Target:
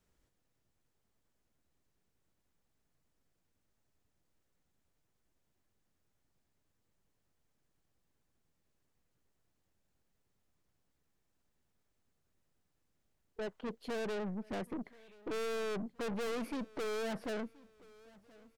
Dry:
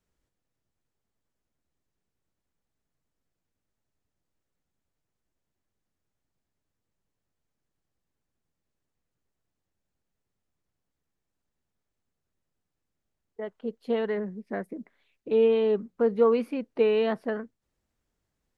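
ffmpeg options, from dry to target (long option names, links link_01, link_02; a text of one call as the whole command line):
ffmpeg -i in.wav -filter_complex "[0:a]aeval=exprs='(tanh(112*val(0)+0.4)-tanh(0.4))/112':channel_layout=same,asplit=2[link_01][link_02];[link_02]aecho=0:1:1027|2054|3081:0.0708|0.0283|0.0113[link_03];[link_01][link_03]amix=inputs=2:normalize=0,volume=4.5dB" out.wav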